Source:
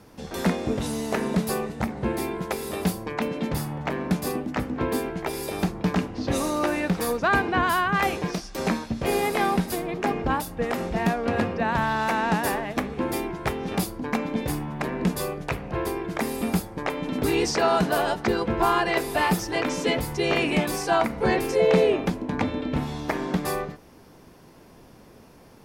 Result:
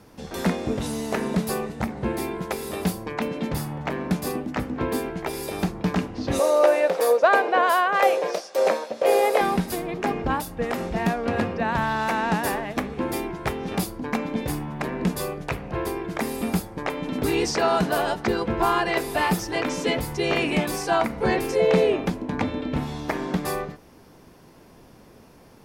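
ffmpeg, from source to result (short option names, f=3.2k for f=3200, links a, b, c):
-filter_complex "[0:a]asettb=1/sr,asplit=3[a][b][c];[a]atrim=end=6.394[d];[b]atrim=start=6.39:end=9.41,asetpts=PTS-STARTPTS,afade=t=in:d=0.004:c=qsin,afade=t=out:st=3.016:d=0.004:c=qsin,highpass=f=540:t=q:w=5.5[e];[c]atrim=start=9.406[f];[d][e]acrossfade=d=0.004:c1=hsin:c2=qsin[g];[g][f]acrossfade=d=0.004:c1=qsin:c2=hsin"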